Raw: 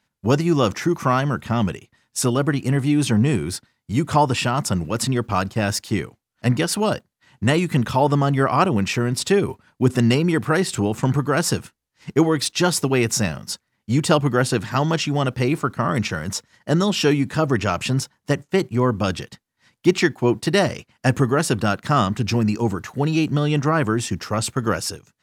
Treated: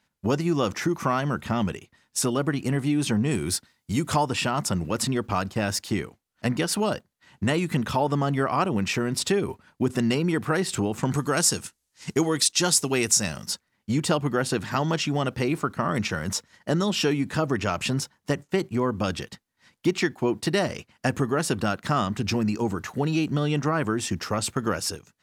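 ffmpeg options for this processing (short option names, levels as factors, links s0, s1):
-filter_complex "[0:a]asettb=1/sr,asplit=3[s0][s1][s2];[s0]atrim=end=3.314[s3];[s1]atrim=start=3.31:end=4.26,asetpts=PTS-STARTPTS,afade=t=in:d=0.004:c=qsin,afade=t=out:st=0.946:d=0.004:c=qsin,highshelf=f=3900:g=7.5[s4];[s2]atrim=start=4.256[s5];[s3][s4]acrossfade=d=0.004:c1=hsin:c2=qsin[s6];[s6][s5]acrossfade=d=0.004:c1=qsin:c2=hsin,asettb=1/sr,asplit=3[s7][s8][s9];[s7]atrim=end=11.114[s10];[s8]atrim=start=11.11:end=13.46,asetpts=PTS-STARTPTS,afade=t=in:d=0.004:c=qsin,afade=t=out:st=2.346:d=0.004:c=qsin,equalizer=f=7900:w=0.57:g=12.5[s11];[s9]atrim=start=13.456[s12];[s10][s11]acrossfade=d=0.004:c1=hsin:c2=qsin[s13];[s13][s12]acrossfade=d=0.004:c1=qsin:c2=hsin,equalizer=f=120:t=o:w=0.28:g=-7,acompressor=threshold=0.0631:ratio=2"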